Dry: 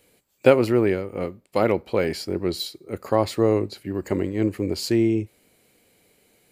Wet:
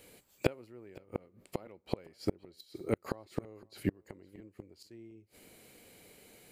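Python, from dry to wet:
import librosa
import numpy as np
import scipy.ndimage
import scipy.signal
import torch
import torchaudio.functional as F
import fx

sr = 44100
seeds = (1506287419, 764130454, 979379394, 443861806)

p1 = fx.gate_flip(x, sr, shuts_db=-19.0, range_db=-35)
p2 = p1 + fx.echo_single(p1, sr, ms=511, db=-23.0, dry=0)
y = p2 * 10.0 ** (3.0 / 20.0)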